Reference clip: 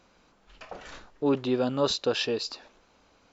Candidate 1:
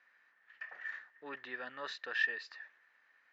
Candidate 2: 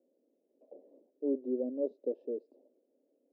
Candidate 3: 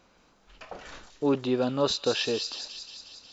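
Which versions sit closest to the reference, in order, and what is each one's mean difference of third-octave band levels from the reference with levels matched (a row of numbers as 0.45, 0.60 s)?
3, 1, 2; 1.5, 8.0, 14.0 dB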